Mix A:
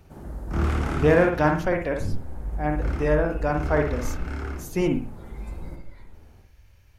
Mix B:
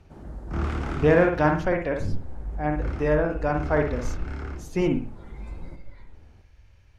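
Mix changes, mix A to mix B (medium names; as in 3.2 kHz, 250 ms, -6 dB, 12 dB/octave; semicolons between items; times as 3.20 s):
background: send -10.0 dB; master: add distance through air 62 m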